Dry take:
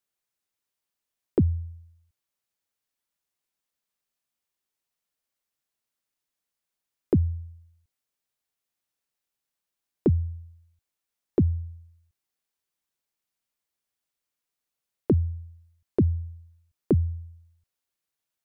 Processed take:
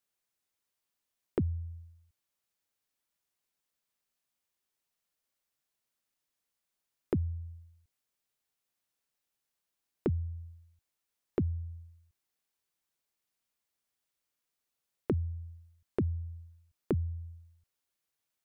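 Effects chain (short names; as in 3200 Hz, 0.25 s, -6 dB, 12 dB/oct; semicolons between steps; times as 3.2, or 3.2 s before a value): compressor 2:1, threshold -35 dBFS, peak gain reduction 10 dB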